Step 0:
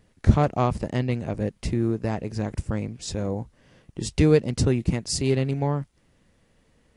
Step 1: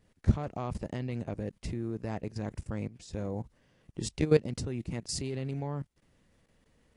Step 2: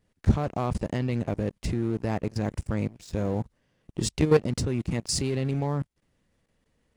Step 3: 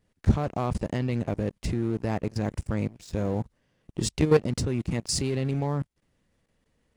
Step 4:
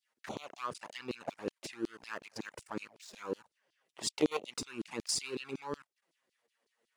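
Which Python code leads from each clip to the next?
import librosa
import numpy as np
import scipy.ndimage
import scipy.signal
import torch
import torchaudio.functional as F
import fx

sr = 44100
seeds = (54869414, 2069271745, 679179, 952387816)

y1 = fx.level_steps(x, sr, step_db=16)
y1 = y1 * 10.0 ** (-2.5 / 20.0)
y2 = fx.leveller(y1, sr, passes=2)
y3 = y2
y4 = fx.env_flanger(y3, sr, rest_ms=8.8, full_db=-20.5)
y4 = fx.filter_lfo_highpass(y4, sr, shape='saw_down', hz=5.4, low_hz=310.0, high_hz=4800.0, q=1.9)
y4 = y4 * 10.0 ** (-2.0 / 20.0)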